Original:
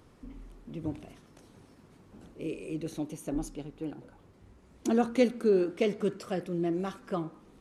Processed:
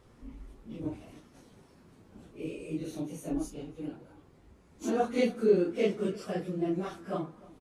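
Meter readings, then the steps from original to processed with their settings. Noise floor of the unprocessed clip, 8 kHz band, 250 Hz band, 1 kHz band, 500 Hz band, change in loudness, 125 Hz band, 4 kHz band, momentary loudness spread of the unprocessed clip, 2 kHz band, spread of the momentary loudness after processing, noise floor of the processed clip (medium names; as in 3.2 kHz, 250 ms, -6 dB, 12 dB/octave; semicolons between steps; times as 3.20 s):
-59 dBFS, -1.0 dB, -1.5 dB, +0.5 dB, -0.5 dB, -1.0 dB, -0.5 dB, -1.0 dB, 19 LU, -0.5 dB, 21 LU, -60 dBFS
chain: phase randomisation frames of 100 ms; echo from a far wall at 52 m, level -21 dB; trim -1 dB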